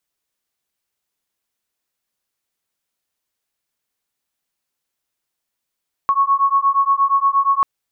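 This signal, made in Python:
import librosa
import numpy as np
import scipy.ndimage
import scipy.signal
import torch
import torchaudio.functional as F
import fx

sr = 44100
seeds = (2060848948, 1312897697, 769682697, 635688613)

y = fx.two_tone_beats(sr, length_s=1.54, hz=1100.0, beat_hz=8.5, level_db=-16.0)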